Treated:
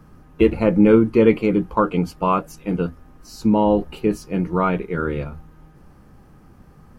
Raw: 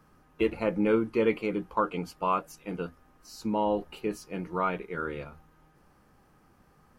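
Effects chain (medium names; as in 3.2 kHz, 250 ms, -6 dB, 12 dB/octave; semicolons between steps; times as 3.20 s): bass shelf 340 Hz +11.5 dB; trim +6 dB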